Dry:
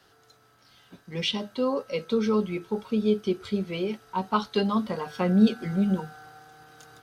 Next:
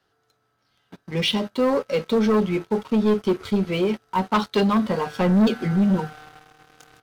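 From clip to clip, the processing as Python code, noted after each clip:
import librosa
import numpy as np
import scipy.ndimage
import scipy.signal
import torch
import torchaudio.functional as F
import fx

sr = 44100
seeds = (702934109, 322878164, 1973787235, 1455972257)

y = fx.high_shelf(x, sr, hz=4100.0, db=-6.0)
y = fx.leveller(y, sr, passes=3)
y = F.gain(torch.from_numpy(y), -3.0).numpy()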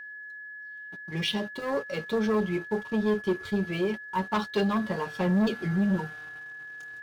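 y = fx.notch_comb(x, sr, f0_hz=250.0)
y = y + 10.0 ** (-34.0 / 20.0) * np.sin(2.0 * np.pi * 1700.0 * np.arange(len(y)) / sr)
y = F.gain(torch.from_numpy(y), -5.5).numpy()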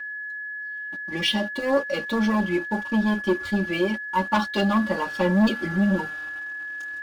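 y = x + 0.96 * np.pad(x, (int(3.5 * sr / 1000.0), 0))[:len(x)]
y = F.gain(torch.from_numpy(y), 3.0).numpy()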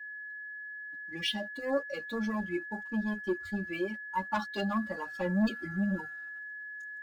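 y = fx.bin_expand(x, sr, power=1.5)
y = F.gain(torch.from_numpy(y), -7.5).numpy()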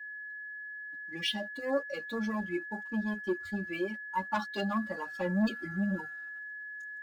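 y = fx.low_shelf(x, sr, hz=60.0, db=-9.5)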